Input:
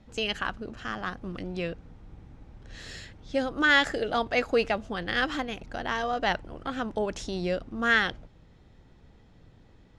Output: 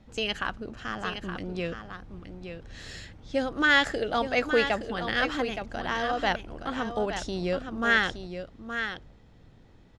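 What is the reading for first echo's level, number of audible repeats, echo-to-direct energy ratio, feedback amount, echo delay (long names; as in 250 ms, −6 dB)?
−8.5 dB, 1, −8.5 dB, repeats not evenly spaced, 869 ms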